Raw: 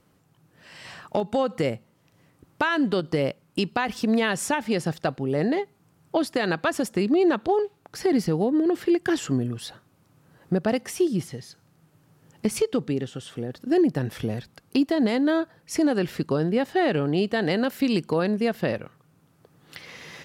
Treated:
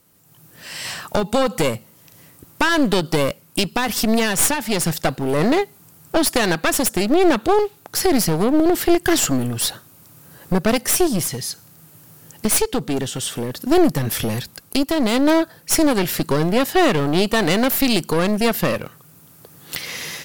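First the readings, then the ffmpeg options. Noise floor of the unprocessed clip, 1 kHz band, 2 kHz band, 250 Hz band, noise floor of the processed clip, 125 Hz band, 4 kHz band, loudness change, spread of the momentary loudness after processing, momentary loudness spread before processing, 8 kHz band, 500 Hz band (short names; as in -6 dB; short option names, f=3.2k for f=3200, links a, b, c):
-63 dBFS, +7.0 dB, +6.5 dB, +4.5 dB, -50 dBFS, +5.0 dB, +11.0 dB, +6.0 dB, 10 LU, 12 LU, +16.5 dB, +5.0 dB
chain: -af "aemphasis=mode=production:type=75fm,aeval=exprs='clip(val(0),-1,0.0316)':c=same,dynaudnorm=f=110:g=5:m=10dB"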